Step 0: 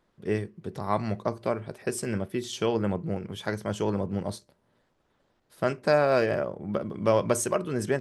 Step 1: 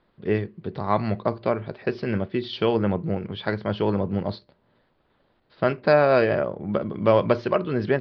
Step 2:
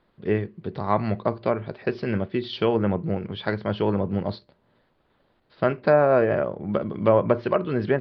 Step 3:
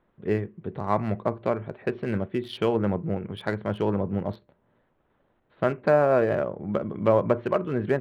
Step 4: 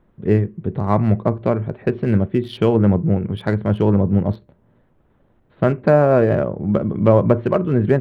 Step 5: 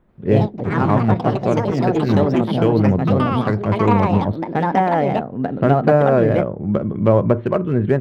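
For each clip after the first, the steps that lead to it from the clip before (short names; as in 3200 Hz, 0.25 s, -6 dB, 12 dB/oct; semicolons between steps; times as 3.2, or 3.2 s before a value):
steep low-pass 4700 Hz 72 dB/oct; gain +4.5 dB
treble ducked by the level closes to 1500 Hz, closed at -15 dBFS
Wiener smoothing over 9 samples; gain -2 dB
low shelf 310 Hz +12 dB; gain +3 dB
echoes that change speed 87 ms, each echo +4 st, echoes 3; gain -1 dB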